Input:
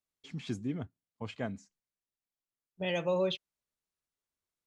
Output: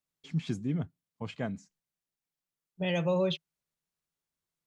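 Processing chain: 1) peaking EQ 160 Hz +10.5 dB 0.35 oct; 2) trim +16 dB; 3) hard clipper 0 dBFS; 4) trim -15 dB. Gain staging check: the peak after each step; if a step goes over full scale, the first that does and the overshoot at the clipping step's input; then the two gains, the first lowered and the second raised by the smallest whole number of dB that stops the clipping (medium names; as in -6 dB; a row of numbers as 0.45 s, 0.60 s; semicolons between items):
-20.0 dBFS, -4.0 dBFS, -4.0 dBFS, -19.0 dBFS; nothing clips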